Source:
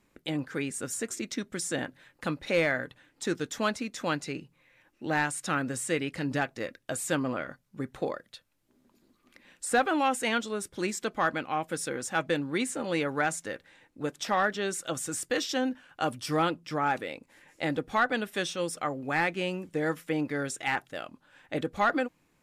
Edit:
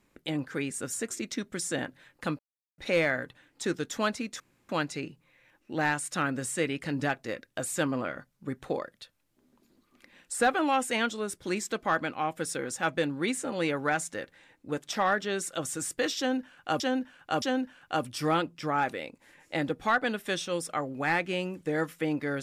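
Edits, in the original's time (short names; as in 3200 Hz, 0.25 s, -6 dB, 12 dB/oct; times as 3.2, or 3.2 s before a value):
2.39 insert silence 0.39 s
4.01 insert room tone 0.29 s
15.5–16.12 loop, 3 plays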